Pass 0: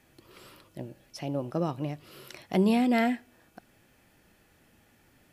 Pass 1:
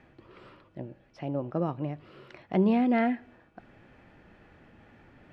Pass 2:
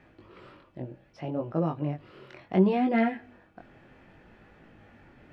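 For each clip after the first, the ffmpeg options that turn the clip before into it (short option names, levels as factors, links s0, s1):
-af "lowpass=2100,areverse,acompressor=mode=upward:threshold=0.00501:ratio=2.5,areverse"
-af "flanger=delay=18:depth=5.8:speed=0.66,volume=1.58"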